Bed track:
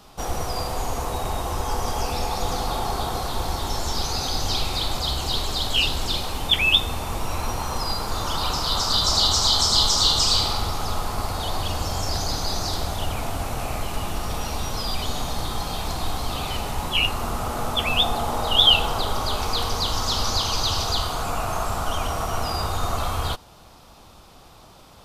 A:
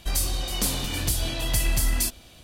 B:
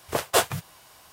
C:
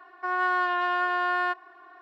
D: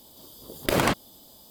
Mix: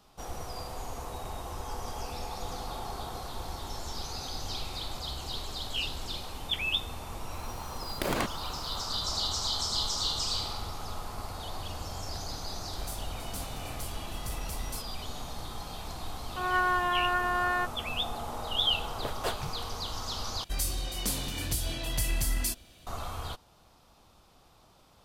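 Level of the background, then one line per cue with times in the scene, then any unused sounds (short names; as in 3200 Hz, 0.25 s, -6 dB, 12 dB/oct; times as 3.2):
bed track -12 dB
7.33 add D -8 dB
12.72 add A -18 dB + sample leveller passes 1
16.13 add C + per-bin expansion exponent 2
18.9 add B -12 dB + tone controls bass +6 dB, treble -7 dB
20.44 replace with A -6 dB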